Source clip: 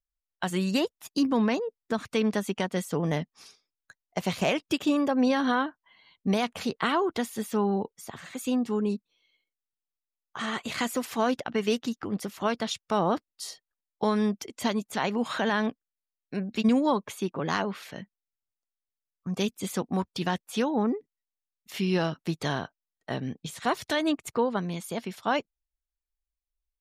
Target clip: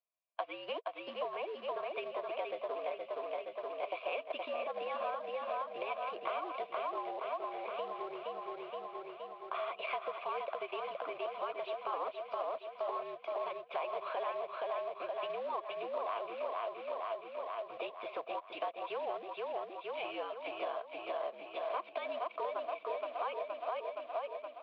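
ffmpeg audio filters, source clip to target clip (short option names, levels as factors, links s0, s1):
-filter_complex "[0:a]asetrate=48000,aresample=44100,aecho=1:1:470|940|1410|1880|2350|2820|3290:0.562|0.315|0.176|0.0988|0.0553|0.031|0.0173,asplit=2[s0][s1];[s1]asoftclip=type=tanh:threshold=0.0355,volume=0.251[s2];[s0][s2]amix=inputs=2:normalize=0,asplit=3[s3][s4][s5];[s3]bandpass=f=730:t=q:w=8,volume=1[s6];[s4]bandpass=f=1090:t=q:w=8,volume=0.501[s7];[s5]bandpass=f=2440:t=q:w=8,volume=0.355[s8];[s6][s7][s8]amix=inputs=3:normalize=0,afftfilt=real='re*lt(hypot(re,im),0.2)':imag='im*lt(hypot(re,im),0.2)':win_size=1024:overlap=0.75,acompressor=threshold=0.00398:ratio=4,aresample=16000,acrusher=bits=4:mode=log:mix=0:aa=0.000001,aresample=44100,highpass=f=510:t=q:w=0.5412,highpass=f=510:t=q:w=1.307,lowpass=f=3500:t=q:w=0.5176,lowpass=f=3500:t=q:w=0.7071,lowpass=f=3500:t=q:w=1.932,afreqshift=-72,volume=3.98"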